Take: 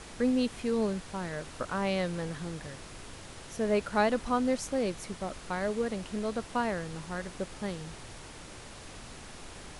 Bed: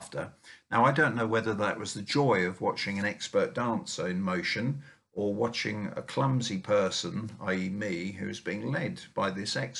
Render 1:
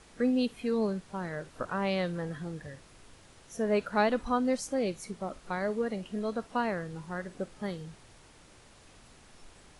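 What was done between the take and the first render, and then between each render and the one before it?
noise print and reduce 10 dB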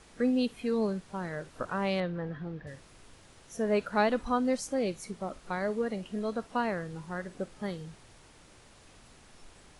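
2.00–2.67 s: distance through air 270 m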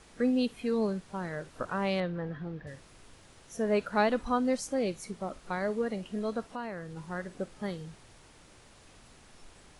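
6.48–6.97 s: compression 2:1, threshold -40 dBFS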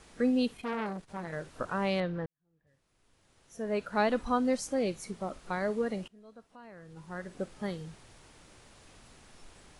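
0.52–1.33 s: transformer saturation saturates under 1.3 kHz; 2.26–4.17 s: fade in quadratic; 6.08–7.43 s: fade in quadratic, from -22.5 dB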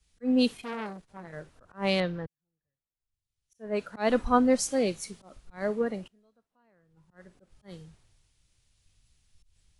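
slow attack 122 ms; three bands expanded up and down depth 100%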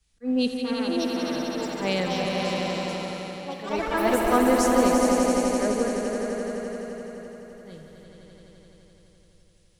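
echo with a slow build-up 85 ms, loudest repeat 5, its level -6.5 dB; ever faster or slower copies 699 ms, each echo +5 st, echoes 3, each echo -6 dB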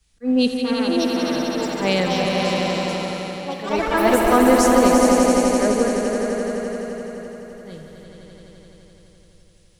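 trim +6 dB; peak limiter -3 dBFS, peak gain reduction 3 dB

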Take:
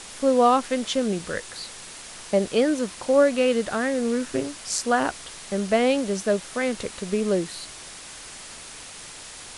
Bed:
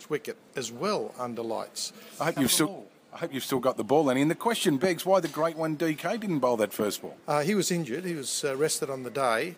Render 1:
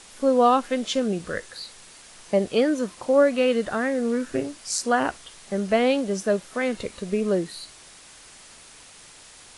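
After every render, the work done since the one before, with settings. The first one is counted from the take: noise print and reduce 7 dB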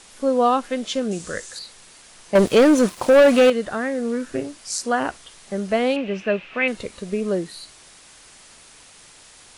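1.11–1.59 s: peaking EQ 7.1 kHz +12.5 dB 1 oct; 2.35–3.50 s: waveshaping leveller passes 3; 5.96–6.68 s: resonant low-pass 2.6 kHz, resonance Q 8.5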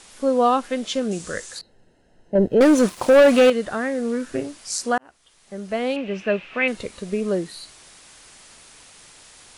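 1.61–2.61 s: boxcar filter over 38 samples; 4.98–6.32 s: fade in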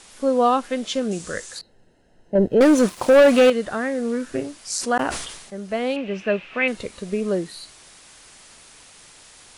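4.72–5.55 s: decay stretcher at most 52 dB/s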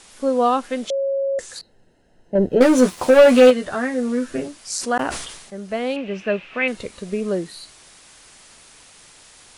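0.90–1.39 s: bleep 548 Hz -18.5 dBFS; 2.47–4.48 s: doubling 12 ms -3.5 dB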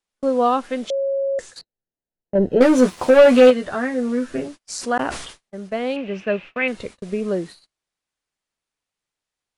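gate -35 dBFS, range -36 dB; treble shelf 6.5 kHz -8 dB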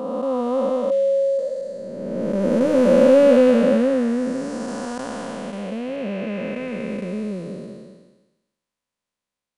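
spectral blur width 784 ms; small resonant body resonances 210/540/1000 Hz, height 8 dB, ringing for 35 ms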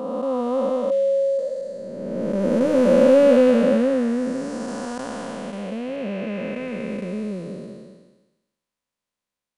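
trim -1 dB

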